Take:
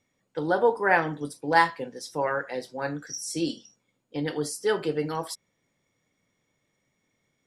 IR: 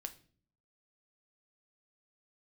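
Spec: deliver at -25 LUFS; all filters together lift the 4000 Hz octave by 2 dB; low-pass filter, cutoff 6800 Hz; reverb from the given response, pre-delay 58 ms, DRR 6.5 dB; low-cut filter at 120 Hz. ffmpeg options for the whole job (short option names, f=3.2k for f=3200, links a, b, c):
-filter_complex "[0:a]highpass=120,lowpass=6.8k,equalizer=f=4k:t=o:g=3.5,asplit=2[a][b];[1:a]atrim=start_sample=2205,adelay=58[c];[b][c]afir=irnorm=-1:irlink=0,volume=-3.5dB[d];[a][d]amix=inputs=2:normalize=0,volume=1.5dB"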